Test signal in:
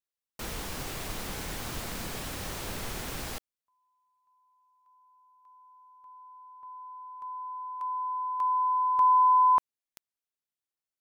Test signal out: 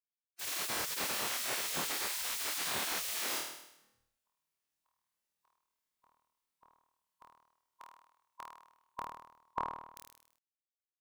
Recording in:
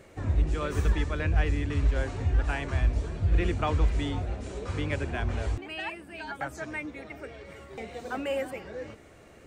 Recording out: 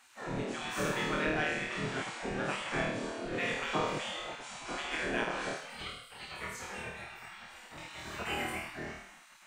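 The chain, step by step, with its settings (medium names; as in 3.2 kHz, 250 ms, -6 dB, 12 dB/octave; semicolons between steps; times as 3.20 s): flutter echo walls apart 4.4 m, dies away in 0.82 s; spectral gate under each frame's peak -15 dB weak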